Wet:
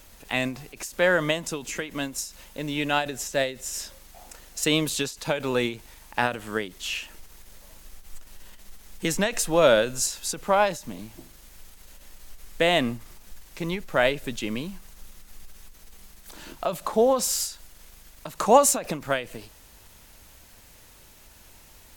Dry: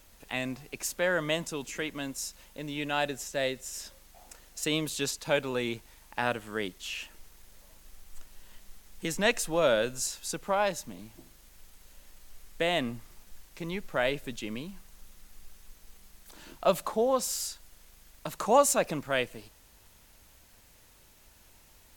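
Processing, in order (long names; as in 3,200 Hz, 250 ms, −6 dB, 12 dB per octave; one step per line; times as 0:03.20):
every ending faded ahead of time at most 150 dB per second
level +7 dB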